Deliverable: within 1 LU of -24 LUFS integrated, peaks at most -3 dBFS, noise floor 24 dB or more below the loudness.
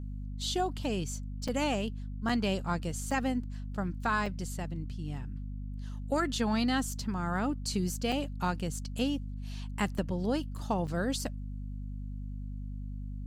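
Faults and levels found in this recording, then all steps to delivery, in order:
dropouts 7; longest dropout 4.4 ms; hum 50 Hz; harmonics up to 250 Hz; hum level -36 dBFS; loudness -34.0 LUFS; peak -18.0 dBFS; loudness target -24.0 LUFS
-> interpolate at 1.48/2.29/3.11/4.26/8.12/9.98/10.87, 4.4 ms; notches 50/100/150/200/250 Hz; gain +10 dB

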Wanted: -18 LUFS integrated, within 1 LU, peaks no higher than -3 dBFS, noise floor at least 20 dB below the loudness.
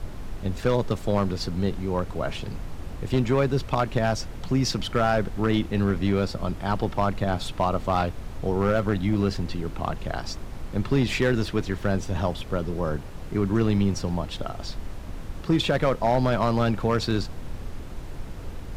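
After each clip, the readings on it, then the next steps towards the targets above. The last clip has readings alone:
clipped 0.8%; flat tops at -14.0 dBFS; noise floor -37 dBFS; noise floor target -46 dBFS; loudness -26.0 LUFS; peak -14.0 dBFS; loudness target -18.0 LUFS
-> clip repair -14 dBFS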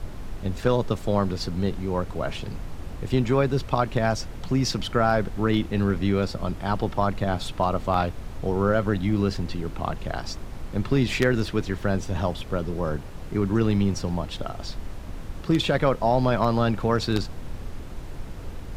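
clipped 0.0%; noise floor -37 dBFS; noise floor target -46 dBFS
-> noise print and reduce 9 dB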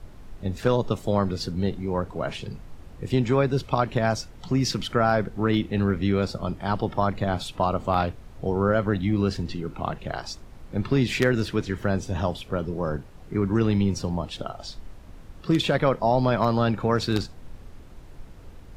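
noise floor -45 dBFS; noise floor target -46 dBFS
-> noise print and reduce 6 dB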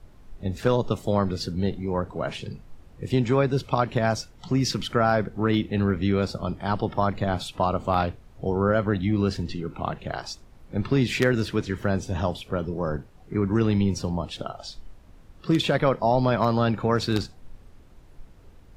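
noise floor -50 dBFS; loudness -25.5 LUFS; peak -5.5 dBFS; loudness target -18.0 LUFS
-> gain +7.5 dB; limiter -3 dBFS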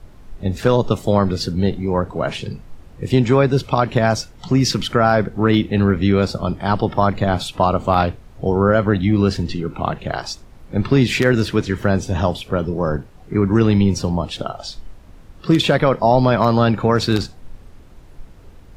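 loudness -18.5 LUFS; peak -3.0 dBFS; noise floor -43 dBFS

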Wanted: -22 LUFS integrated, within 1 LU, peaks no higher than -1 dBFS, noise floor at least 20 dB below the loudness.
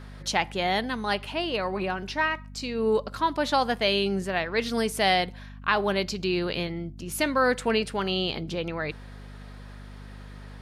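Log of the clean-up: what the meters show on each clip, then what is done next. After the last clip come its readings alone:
hum 50 Hz; harmonics up to 250 Hz; hum level -40 dBFS; loudness -27.0 LUFS; peak -9.0 dBFS; loudness target -22.0 LUFS
-> de-hum 50 Hz, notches 5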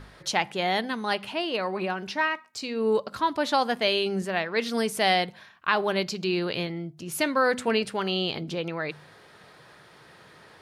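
hum none; loudness -27.0 LUFS; peak -9.0 dBFS; loudness target -22.0 LUFS
-> gain +5 dB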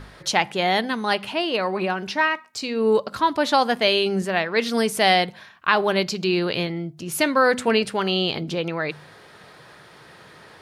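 loudness -22.0 LUFS; peak -4.0 dBFS; noise floor -48 dBFS

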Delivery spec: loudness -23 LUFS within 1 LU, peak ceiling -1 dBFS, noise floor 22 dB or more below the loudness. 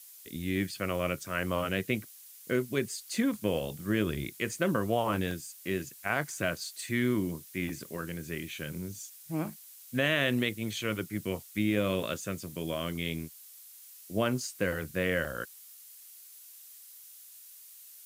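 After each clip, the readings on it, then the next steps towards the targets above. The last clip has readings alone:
dropouts 5; longest dropout 2.6 ms; noise floor -52 dBFS; noise floor target -55 dBFS; loudness -32.5 LUFS; peak -14.0 dBFS; loudness target -23.0 LUFS
-> interpolate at 1.07/5.31/6.64/7.69/15.25, 2.6 ms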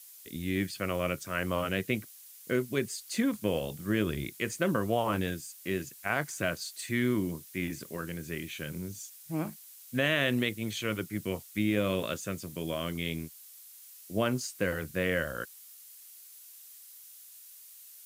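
dropouts 0; noise floor -52 dBFS; noise floor target -55 dBFS
-> denoiser 6 dB, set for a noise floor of -52 dBFS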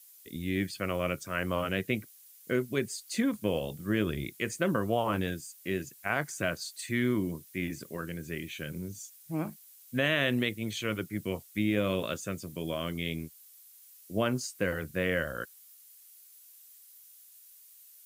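noise floor -56 dBFS; loudness -32.5 LUFS; peak -14.0 dBFS; loudness target -23.0 LUFS
-> gain +9.5 dB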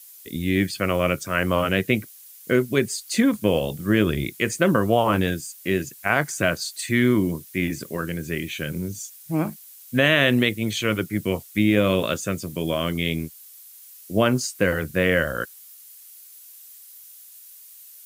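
loudness -23.0 LUFS; peak -4.5 dBFS; noise floor -46 dBFS

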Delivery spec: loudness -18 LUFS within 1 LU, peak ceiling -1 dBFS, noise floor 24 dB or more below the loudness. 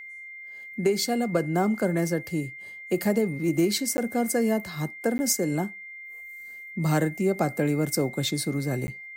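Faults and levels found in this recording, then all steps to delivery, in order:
dropouts 3; longest dropout 10 ms; steady tone 2100 Hz; tone level -39 dBFS; loudness -26.5 LUFS; peak -11.0 dBFS; loudness target -18.0 LUFS
-> interpolate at 3.97/5.18/8.87, 10 ms; notch 2100 Hz, Q 30; gain +8.5 dB

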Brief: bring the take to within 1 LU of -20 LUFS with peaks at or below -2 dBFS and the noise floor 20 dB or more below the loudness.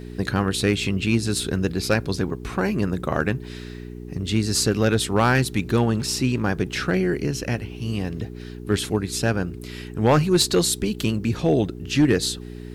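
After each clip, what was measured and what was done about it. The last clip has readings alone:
clipped 0.4%; flat tops at -10.5 dBFS; hum 60 Hz; harmonics up to 420 Hz; hum level -34 dBFS; loudness -22.5 LUFS; peak -10.5 dBFS; loudness target -20.0 LUFS
-> clip repair -10.5 dBFS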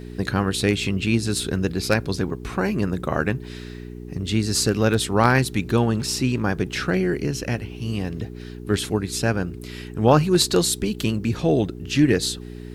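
clipped 0.0%; hum 60 Hz; harmonics up to 420 Hz; hum level -34 dBFS
-> de-hum 60 Hz, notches 7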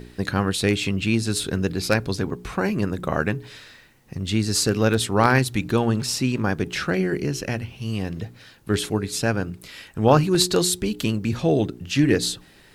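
hum none; loudness -23.0 LUFS; peak -2.0 dBFS; loudness target -20.0 LUFS
-> gain +3 dB; limiter -2 dBFS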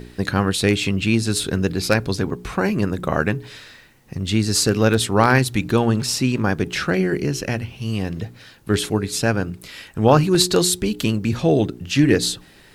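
loudness -20.0 LUFS; peak -2.0 dBFS; noise floor -49 dBFS

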